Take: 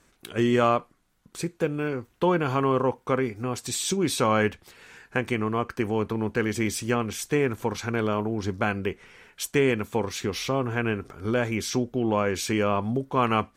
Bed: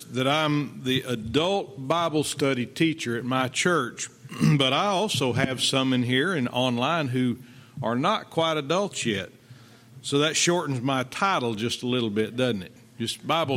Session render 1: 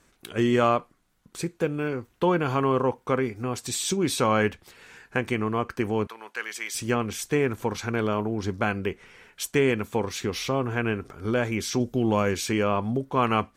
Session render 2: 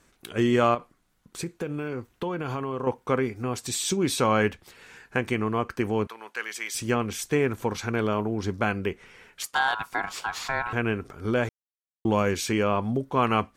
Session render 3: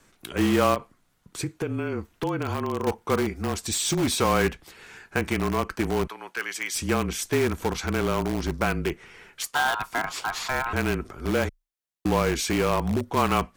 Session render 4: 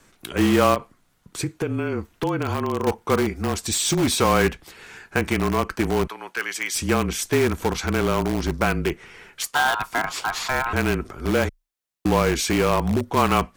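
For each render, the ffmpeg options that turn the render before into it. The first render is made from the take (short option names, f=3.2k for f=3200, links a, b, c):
-filter_complex "[0:a]asettb=1/sr,asplit=3[a][b][c];[a]atrim=end=6.074[d];[b]atrim=start=6.07:end=6.75,asetpts=PTS-STARTPTS,afade=t=in:d=0.004:c=qsin,afade=t=out:st=0.676:d=0.004:c=qsin,highpass=1.1k[e];[c]atrim=start=6.746[f];[d][e]acrossfade=d=0.004:c1=hsin:c2=qsin[g];[g][f]acrossfade=d=0.004:c1=qsin:c2=hsin,asettb=1/sr,asplit=3[h][i][j];[h]atrim=end=11.804[k];[i]atrim=start=11.8:end=12.34,asetpts=PTS-STARTPTS,afade=t=in:d=0.004:c=qsin,afade=t=out:st=0.536:d=0.004:c=qsin,bass=f=250:g=4,treble=f=4k:g=10[l];[j]atrim=start=12.336[m];[k][l]acrossfade=d=0.004:c1=hsin:c2=qsin[n];[n][m]acrossfade=d=0.004:c1=qsin:c2=hsin"
-filter_complex "[0:a]asettb=1/sr,asplit=3[a][b][c];[a]atrim=end=0.744[d];[b]atrim=start=0.74:end=2.87,asetpts=PTS-STARTPTS,afade=t=in:d=0.004:c=qsin,afade=t=out:st=2.126:d=0.004:c=qsin,acompressor=threshold=-26dB:ratio=6:attack=3.2:release=140:knee=1:detection=peak[e];[c]atrim=start=2.866[f];[d][e]acrossfade=d=0.004:c1=hsin:c2=qsin[g];[g][f]acrossfade=d=0.004:c1=qsin:c2=hsin,asettb=1/sr,asplit=3[h][i][j];[h]atrim=end=9.424[k];[i]atrim=start=9.42:end=10.73,asetpts=PTS-STARTPTS,afade=t=in:d=0.004:c=qsin,afade=t=out:st=1.306:d=0.004:c=qsin,aeval=exprs='val(0)*sin(2*PI*1200*n/s)':c=same[l];[j]atrim=start=10.726[m];[k][l]acrossfade=d=0.004:c1=hsin:c2=qsin[n];[n][m]acrossfade=d=0.004:c1=qsin:c2=hsin,asplit=3[o][p][q];[o]atrim=end=11.49,asetpts=PTS-STARTPTS,afade=t=out:st=11.486:d=0.004:c=hsin[r];[p]atrim=start=11.49:end=12.05,asetpts=PTS-STARTPTS,volume=0[s];[q]atrim=start=12.05,asetpts=PTS-STARTPTS,afade=t=in:d=0.004:c=hsin[t];[r][s][t]concat=n=3:v=0:a=1"
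-filter_complex "[0:a]afreqshift=-28,asplit=2[a][b];[b]aeval=exprs='(mod(11.2*val(0)+1,2)-1)/11.2':c=same,volume=-8.5dB[c];[a][c]amix=inputs=2:normalize=0"
-af "volume=3.5dB"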